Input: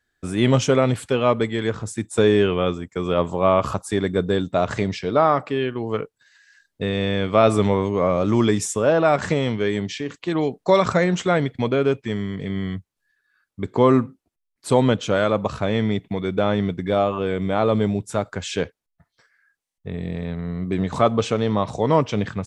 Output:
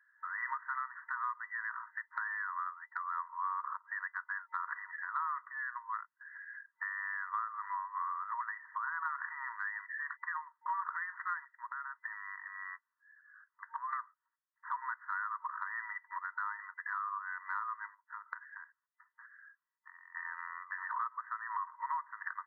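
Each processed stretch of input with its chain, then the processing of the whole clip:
11.44–13.93 HPF 47 Hz + compressor 4:1, threshold -31 dBFS
17.94–20.15 compressor 16:1, threshold -36 dBFS + air absorption 180 m
whole clip: FFT band-pass 920–2000 Hz; compressor 5:1, threshold -44 dBFS; gain +7 dB

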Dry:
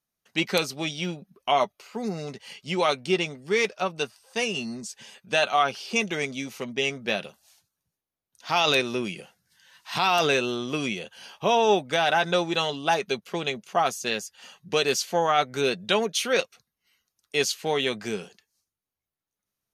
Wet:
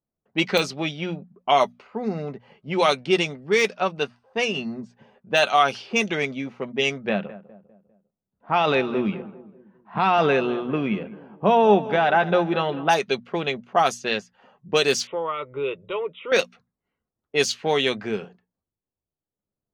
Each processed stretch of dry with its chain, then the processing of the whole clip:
7.09–12.89 LPF 1900 Hz + bell 200 Hz +8.5 dB 0.34 oct + feedback echo 0.2 s, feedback 46%, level -16 dB
15.07–16.32 compressor 2:1, threshold -27 dBFS + brick-wall FIR low-pass 3900 Hz + fixed phaser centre 1100 Hz, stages 8
whole clip: low-pass opened by the level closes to 610 Hz, open at -18.5 dBFS; notches 60/120/180/240 Hz; de-esser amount 55%; gain +4 dB

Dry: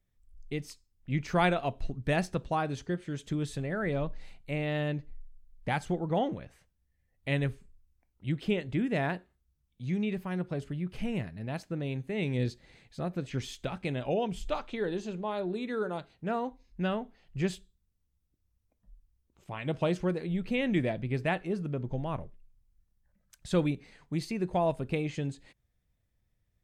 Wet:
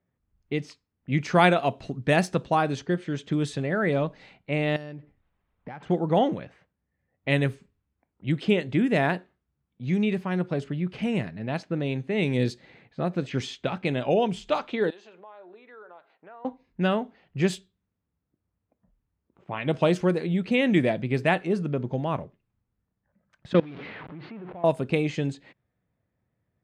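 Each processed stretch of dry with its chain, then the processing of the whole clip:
4.76–5.83 high shelf 7100 Hz +8.5 dB + compressor 10:1, threshold -41 dBFS + decimation joined by straight lines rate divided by 6×
14.9–16.45 HPF 700 Hz + compressor 3:1, threshold -56 dBFS
23.53–24.64 zero-crossing step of -30.5 dBFS + LPF 3500 Hz 24 dB/oct + level quantiser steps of 23 dB
whole clip: low-pass opened by the level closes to 1500 Hz, open at -26 dBFS; HPF 140 Hz 12 dB/oct; gain +7.5 dB

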